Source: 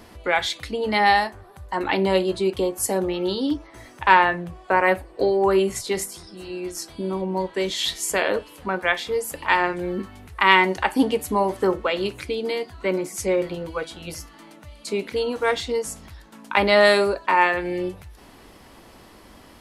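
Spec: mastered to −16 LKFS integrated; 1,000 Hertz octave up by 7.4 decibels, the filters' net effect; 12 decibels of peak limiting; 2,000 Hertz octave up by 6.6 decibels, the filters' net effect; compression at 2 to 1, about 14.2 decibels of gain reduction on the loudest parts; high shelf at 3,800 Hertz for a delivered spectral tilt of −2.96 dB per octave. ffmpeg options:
ffmpeg -i in.wav -af "equalizer=frequency=1000:width_type=o:gain=7.5,equalizer=frequency=2000:width_type=o:gain=4.5,highshelf=frequency=3800:gain=4.5,acompressor=threshold=-29dB:ratio=2,volume=13.5dB,alimiter=limit=-3.5dB:level=0:latency=1" out.wav

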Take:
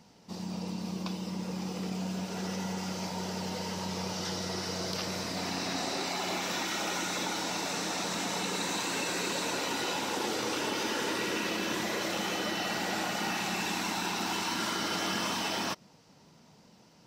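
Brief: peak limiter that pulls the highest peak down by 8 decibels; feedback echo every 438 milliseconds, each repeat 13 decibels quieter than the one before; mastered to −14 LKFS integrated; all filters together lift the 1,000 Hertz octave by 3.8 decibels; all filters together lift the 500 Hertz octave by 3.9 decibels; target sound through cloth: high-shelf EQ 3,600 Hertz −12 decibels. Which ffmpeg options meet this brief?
ffmpeg -i in.wav -af "equalizer=frequency=500:width_type=o:gain=4,equalizer=frequency=1000:width_type=o:gain=4.5,alimiter=level_in=1dB:limit=-24dB:level=0:latency=1,volume=-1dB,highshelf=frequency=3600:gain=-12,aecho=1:1:438|876|1314:0.224|0.0493|0.0108,volume=21.5dB" out.wav

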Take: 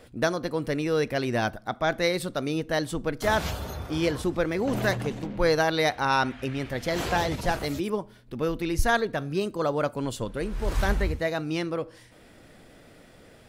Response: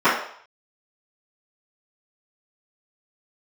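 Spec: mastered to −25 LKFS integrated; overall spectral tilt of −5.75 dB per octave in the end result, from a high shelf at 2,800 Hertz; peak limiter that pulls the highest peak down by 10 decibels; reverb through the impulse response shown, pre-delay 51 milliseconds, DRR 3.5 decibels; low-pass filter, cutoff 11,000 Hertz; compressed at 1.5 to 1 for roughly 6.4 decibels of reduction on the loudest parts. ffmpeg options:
-filter_complex "[0:a]lowpass=11000,highshelf=frequency=2800:gain=-9,acompressor=threshold=-35dB:ratio=1.5,alimiter=level_in=1.5dB:limit=-24dB:level=0:latency=1,volume=-1.5dB,asplit=2[link_01][link_02];[1:a]atrim=start_sample=2205,adelay=51[link_03];[link_02][link_03]afir=irnorm=-1:irlink=0,volume=-27dB[link_04];[link_01][link_04]amix=inputs=2:normalize=0,volume=10dB"

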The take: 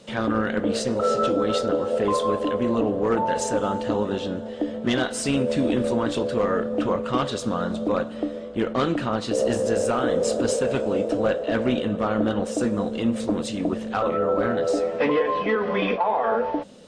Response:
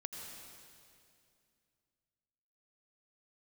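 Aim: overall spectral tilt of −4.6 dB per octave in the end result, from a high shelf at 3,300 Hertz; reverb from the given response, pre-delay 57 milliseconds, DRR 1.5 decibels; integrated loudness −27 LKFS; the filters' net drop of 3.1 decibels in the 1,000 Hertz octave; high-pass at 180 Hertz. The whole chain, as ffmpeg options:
-filter_complex "[0:a]highpass=180,equalizer=frequency=1000:width_type=o:gain=-3.5,highshelf=frequency=3300:gain=-4.5,asplit=2[link_01][link_02];[1:a]atrim=start_sample=2205,adelay=57[link_03];[link_02][link_03]afir=irnorm=-1:irlink=0,volume=0dB[link_04];[link_01][link_04]amix=inputs=2:normalize=0,volume=-4dB"

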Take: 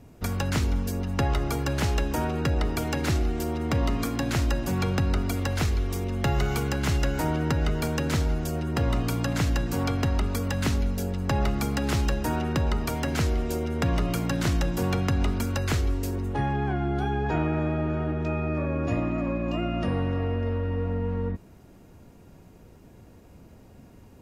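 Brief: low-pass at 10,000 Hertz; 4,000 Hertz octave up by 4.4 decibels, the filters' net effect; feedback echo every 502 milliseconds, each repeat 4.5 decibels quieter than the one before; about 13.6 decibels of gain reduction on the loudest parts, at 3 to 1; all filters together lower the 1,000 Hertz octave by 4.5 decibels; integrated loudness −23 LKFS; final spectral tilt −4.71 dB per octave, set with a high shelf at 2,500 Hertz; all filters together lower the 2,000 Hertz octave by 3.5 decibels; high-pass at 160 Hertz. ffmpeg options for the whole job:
ffmpeg -i in.wav -af "highpass=160,lowpass=10000,equalizer=frequency=1000:width_type=o:gain=-5.5,equalizer=frequency=2000:width_type=o:gain=-6.5,highshelf=frequency=2500:gain=5,equalizer=frequency=4000:width_type=o:gain=3.5,acompressor=threshold=-43dB:ratio=3,aecho=1:1:502|1004|1506|2008|2510|3012|3514|4016|4518:0.596|0.357|0.214|0.129|0.0772|0.0463|0.0278|0.0167|0.01,volume=17dB" out.wav

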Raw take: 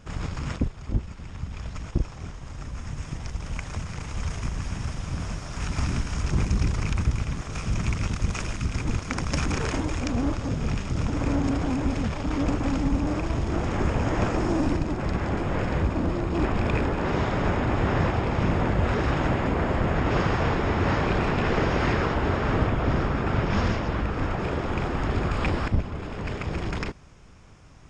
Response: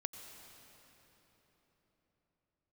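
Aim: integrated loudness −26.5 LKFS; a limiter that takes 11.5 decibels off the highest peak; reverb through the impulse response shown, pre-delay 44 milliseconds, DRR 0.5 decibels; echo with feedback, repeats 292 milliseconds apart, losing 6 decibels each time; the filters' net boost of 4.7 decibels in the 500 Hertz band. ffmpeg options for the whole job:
-filter_complex "[0:a]equalizer=frequency=500:width_type=o:gain=6,alimiter=limit=-19.5dB:level=0:latency=1,aecho=1:1:292|584|876|1168|1460|1752:0.501|0.251|0.125|0.0626|0.0313|0.0157,asplit=2[link_01][link_02];[1:a]atrim=start_sample=2205,adelay=44[link_03];[link_02][link_03]afir=irnorm=-1:irlink=0,volume=1dB[link_04];[link_01][link_04]amix=inputs=2:normalize=0,volume=-1dB"

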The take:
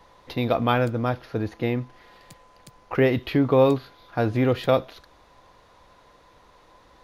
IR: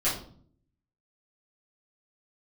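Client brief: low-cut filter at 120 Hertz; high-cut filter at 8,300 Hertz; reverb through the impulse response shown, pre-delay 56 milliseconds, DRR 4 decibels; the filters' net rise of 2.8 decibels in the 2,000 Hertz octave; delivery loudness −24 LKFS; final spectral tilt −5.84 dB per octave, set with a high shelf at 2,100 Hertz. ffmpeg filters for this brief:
-filter_complex "[0:a]highpass=120,lowpass=8300,equalizer=frequency=2000:width_type=o:gain=6,highshelf=frequency=2100:gain=-4.5,asplit=2[link_01][link_02];[1:a]atrim=start_sample=2205,adelay=56[link_03];[link_02][link_03]afir=irnorm=-1:irlink=0,volume=-14.5dB[link_04];[link_01][link_04]amix=inputs=2:normalize=0,volume=-1.5dB"

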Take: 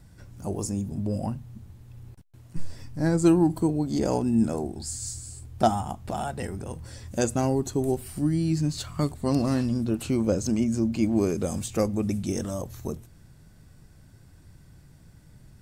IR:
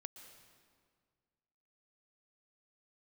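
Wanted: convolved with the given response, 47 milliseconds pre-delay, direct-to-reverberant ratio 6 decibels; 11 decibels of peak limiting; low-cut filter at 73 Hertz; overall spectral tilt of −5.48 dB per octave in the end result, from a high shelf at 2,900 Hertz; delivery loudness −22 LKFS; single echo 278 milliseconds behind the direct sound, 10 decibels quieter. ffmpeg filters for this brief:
-filter_complex "[0:a]highpass=73,highshelf=frequency=2900:gain=4.5,alimiter=limit=-18.5dB:level=0:latency=1,aecho=1:1:278:0.316,asplit=2[link_01][link_02];[1:a]atrim=start_sample=2205,adelay=47[link_03];[link_02][link_03]afir=irnorm=-1:irlink=0,volume=-1dB[link_04];[link_01][link_04]amix=inputs=2:normalize=0,volume=6dB"

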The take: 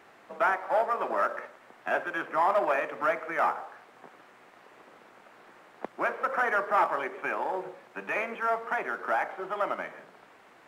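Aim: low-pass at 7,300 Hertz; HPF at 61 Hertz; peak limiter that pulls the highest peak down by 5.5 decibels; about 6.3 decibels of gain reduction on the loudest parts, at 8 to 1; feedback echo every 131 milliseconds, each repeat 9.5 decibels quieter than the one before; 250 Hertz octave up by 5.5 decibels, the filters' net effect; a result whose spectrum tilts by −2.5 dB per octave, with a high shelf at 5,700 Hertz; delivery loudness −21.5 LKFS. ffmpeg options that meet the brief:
ffmpeg -i in.wav -af "highpass=61,lowpass=7300,equalizer=frequency=250:width_type=o:gain=8,highshelf=frequency=5700:gain=8,acompressor=threshold=-26dB:ratio=8,alimiter=limit=-23dB:level=0:latency=1,aecho=1:1:131|262|393|524:0.335|0.111|0.0365|0.012,volume=12dB" out.wav

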